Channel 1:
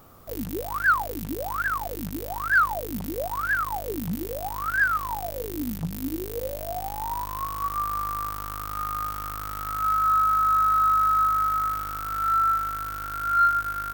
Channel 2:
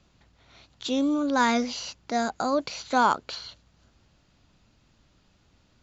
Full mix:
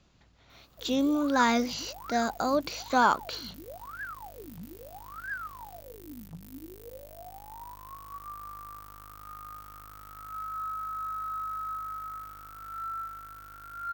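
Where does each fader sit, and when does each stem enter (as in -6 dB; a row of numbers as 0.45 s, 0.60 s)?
-14.5 dB, -1.5 dB; 0.50 s, 0.00 s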